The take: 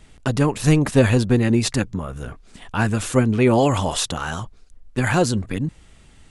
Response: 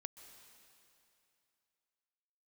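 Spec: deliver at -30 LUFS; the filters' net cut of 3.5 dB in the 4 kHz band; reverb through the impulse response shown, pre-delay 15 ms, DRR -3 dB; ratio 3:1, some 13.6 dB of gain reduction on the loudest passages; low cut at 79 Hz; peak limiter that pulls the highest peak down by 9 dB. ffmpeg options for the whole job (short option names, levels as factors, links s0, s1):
-filter_complex "[0:a]highpass=79,equalizer=f=4000:t=o:g=-4.5,acompressor=threshold=0.0316:ratio=3,alimiter=limit=0.0668:level=0:latency=1,asplit=2[s0][s1];[1:a]atrim=start_sample=2205,adelay=15[s2];[s1][s2]afir=irnorm=-1:irlink=0,volume=2.37[s3];[s0][s3]amix=inputs=2:normalize=0,volume=0.944"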